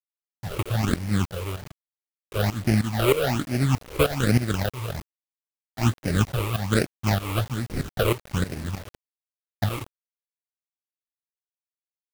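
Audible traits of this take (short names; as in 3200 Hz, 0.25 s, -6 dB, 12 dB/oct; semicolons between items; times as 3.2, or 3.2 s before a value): aliases and images of a low sample rate 1000 Hz, jitter 20%; phasing stages 8, 1.2 Hz, lowest notch 210–1100 Hz; tremolo saw up 3.2 Hz, depth 85%; a quantiser's noise floor 8-bit, dither none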